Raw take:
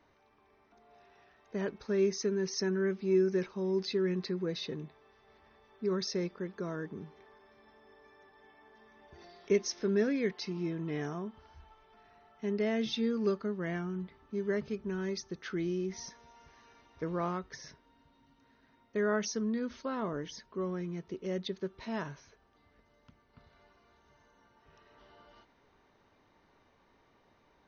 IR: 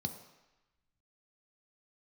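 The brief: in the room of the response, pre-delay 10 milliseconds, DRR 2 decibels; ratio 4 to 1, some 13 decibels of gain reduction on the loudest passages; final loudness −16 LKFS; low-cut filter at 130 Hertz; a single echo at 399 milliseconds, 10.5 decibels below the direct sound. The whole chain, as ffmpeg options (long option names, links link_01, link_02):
-filter_complex "[0:a]highpass=130,acompressor=threshold=-39dB:ratio=4,aecho=1:1:399:0.299,asplit=2[link_01][link_02];[1:a]atrim=start_sample=2205,adelay=10[link_03];[link_02][link_03]afir=irnorm=-1:irlink=0,volume=-2dB[link_04];[link_01][link_04]amix=inputs=2:normalize=0,volume=20.5dB"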